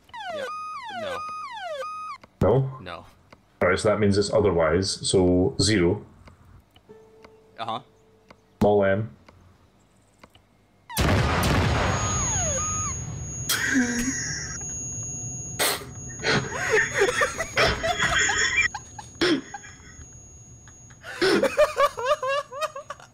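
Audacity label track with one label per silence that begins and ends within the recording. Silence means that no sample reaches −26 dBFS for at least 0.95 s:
5.970000	7.600000	silence
9.050000	10.970000	silence
19.550000	21.160000	silence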